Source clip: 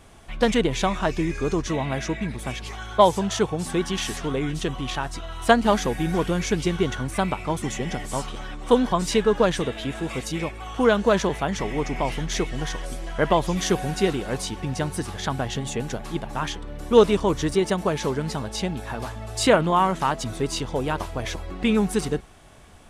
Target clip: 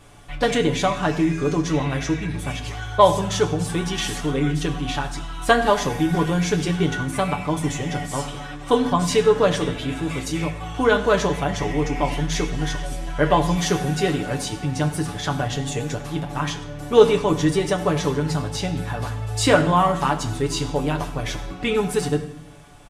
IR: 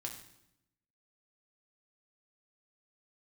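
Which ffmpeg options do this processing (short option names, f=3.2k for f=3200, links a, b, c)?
-filter_complex "[0:a]aecho=1:1:6.9:0.65,asplit=2[a][b];[1:a]atrim=start_sample=2205,asetrate=41013,aresample=44100[c];[b][c]afir=irnorm=-1:irlink=0,volume=4.5dB[d];[a][d]amix=inputs=2:normalize=0,volume=-6.5dB"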